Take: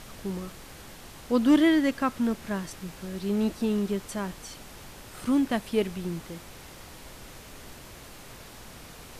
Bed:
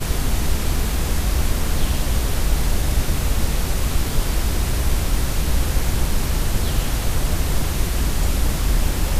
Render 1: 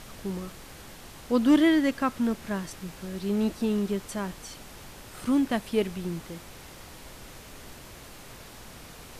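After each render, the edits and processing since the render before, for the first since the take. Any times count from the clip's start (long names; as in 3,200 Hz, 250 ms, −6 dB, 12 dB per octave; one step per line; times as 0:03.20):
no processing that can be heard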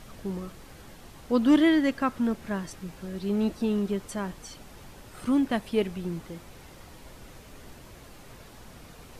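broadband denoise 6 dB, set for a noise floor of −47 dBFS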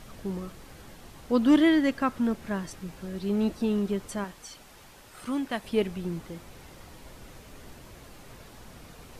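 0:04.24–0:05.64: low-shelf EQ 460 Hz −9 dB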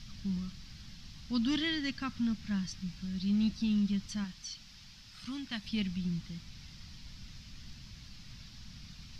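drawn EQ curve 200 Hz 0 dB, 430 Hz −26 dB, 5,200 Hz +7 dB, 8,800 Hz −17 dB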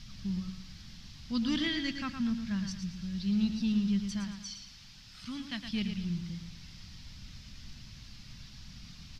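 repeating echo 113 ms, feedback 38%, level −7.5 dB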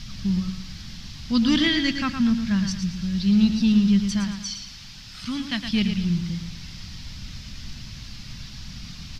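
level +11 dB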